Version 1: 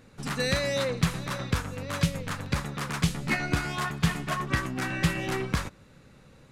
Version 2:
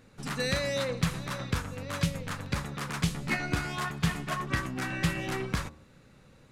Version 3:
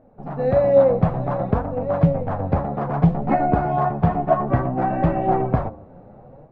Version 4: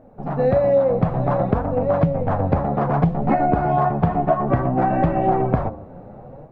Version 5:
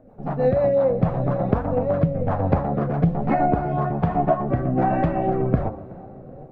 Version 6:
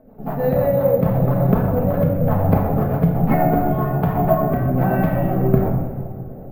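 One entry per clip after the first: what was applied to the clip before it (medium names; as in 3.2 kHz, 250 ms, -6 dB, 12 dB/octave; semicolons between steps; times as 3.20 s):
de-hum 75.71 Hz, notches 15; trim -2.5 dB
level rider gain up to 9 dB; resonant low-pass 710 Hz, resonance Q 4.9; flange 0.59 Hz, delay 3.1 ms, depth 8.4 ms, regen +48%; trim +6 dB
compression 6:1, threshold -19 dBFS, peak gain reduction 9.5 dB; trim +5 dB
rotary cabinet horn 6 Hz, later 1.2 Hz, at 0.49 s; tape echo 377 ms, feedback 73%, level -19 dB, low-pass 1.3 kHz
simulated room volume 1100 m³, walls mixed, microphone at 1.5 m; careless resampling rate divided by 3×, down filtered, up hold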